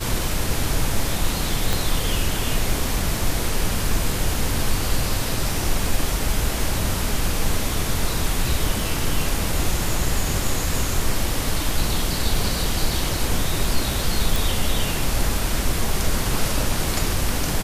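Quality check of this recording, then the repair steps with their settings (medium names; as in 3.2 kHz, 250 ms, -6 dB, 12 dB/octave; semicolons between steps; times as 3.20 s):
1.73 s: pop
14.36 s: pop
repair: de-click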